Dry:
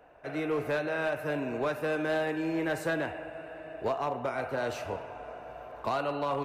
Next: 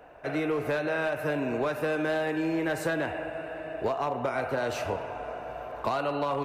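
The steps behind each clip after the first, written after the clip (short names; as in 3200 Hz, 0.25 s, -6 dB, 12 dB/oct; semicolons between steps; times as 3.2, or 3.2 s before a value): compressor, threshold -31 dBFS, peak gain reduction 5.5 dB; gain +6 dB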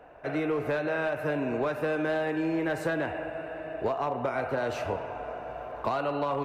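high shelf 4100 Hz -8 dB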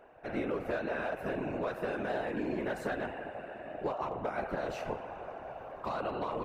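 whisperiser; gain -6 dB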